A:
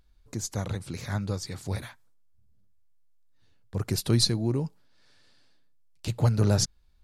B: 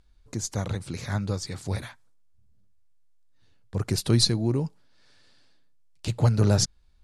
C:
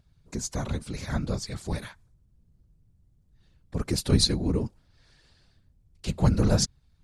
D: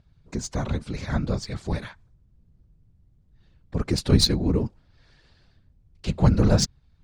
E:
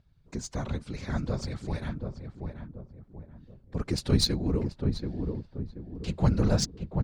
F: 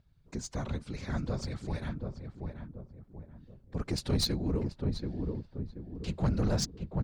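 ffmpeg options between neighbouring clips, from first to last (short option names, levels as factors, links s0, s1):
-af "lowpass=f=11000:w=0.5412,lowpass=f=11000:w=1.3066,volume=1.26"
-af "afftfilt=real='hypot(re,im)*cos(2*PI*random(0))':imag='hypot(re,im)*sin(2*PI*random(1))':win_size=512:overlap=0.75,volume=1.78"
-af "adynamicsmooth=sensitivity=2:basefreq=5500,volume=1.5"
-filter_complex "[0:a]asplit=2[s0][s1];[s1]adelay=732,lowpass=f=900:p=1,volume=0.631,asplit=2[s2][s3];[s3]adelay=732,lowpass=f=900:p=1,volume=0.42,asplit=2[s4][s5];[s5]adelay=732,lowpass=f=900:p=1,volume=0.42,asplit=2[s6][s7];[s7]adelay=732,lowpass=f=900:p=1,volume=0.42,asplit=2[s8][s9];[s9]adelay=732,lowpass=f=900:p=1,volume=0.42[s10];[s0][s2][s4][s6][s8][s10]amix=inputs=6:normalize=0,volume=0.531"
-af "asoftclip=type=tanh:threshold=0.106,volume=0.794"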